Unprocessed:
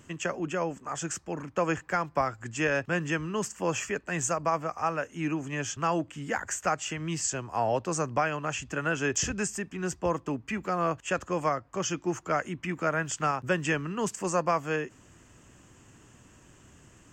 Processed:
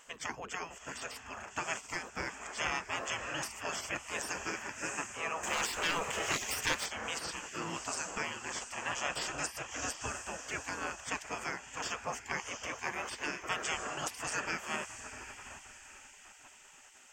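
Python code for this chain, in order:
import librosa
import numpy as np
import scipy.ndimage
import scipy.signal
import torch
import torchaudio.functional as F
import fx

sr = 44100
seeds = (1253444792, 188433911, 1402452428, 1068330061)

y = fx.echo_diffused(x, sr, ms=702, feedback_pct=47, wet_db=-12)
y = fx.leveller(y, sr, passes=2, at=(5.43, 6.86))
y = fx.spec_gate(y, sr, threshold_db=-15, keep='weak')
y = F.gain(torch.from_numpy(y), 2.5).numpy()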